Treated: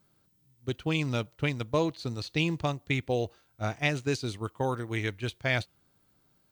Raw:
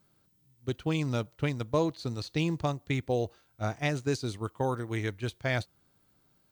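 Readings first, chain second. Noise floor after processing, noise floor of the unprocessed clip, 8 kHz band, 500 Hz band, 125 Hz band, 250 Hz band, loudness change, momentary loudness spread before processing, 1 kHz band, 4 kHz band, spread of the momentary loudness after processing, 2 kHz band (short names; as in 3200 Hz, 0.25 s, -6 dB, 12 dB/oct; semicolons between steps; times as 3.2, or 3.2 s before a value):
-69 dBFS, -69 dBFS, +0.5 dB, 0.0 dB, 0.0 dB, 0.0 dB, +1.0 dB, 7 LU, +0.5 dB, +4.0 dB, 7 LU, +4.5 dB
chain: dynamic EQ 2700 Hz, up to +7 dB, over -50 dBFS, Q 1.4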